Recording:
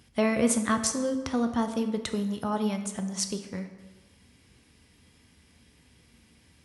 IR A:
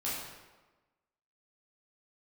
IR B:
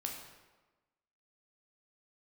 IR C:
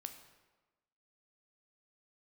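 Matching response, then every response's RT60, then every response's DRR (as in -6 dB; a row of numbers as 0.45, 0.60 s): C; 1.2, 1.2, 1.2 s; -8.5, 0.5, 6.5 dB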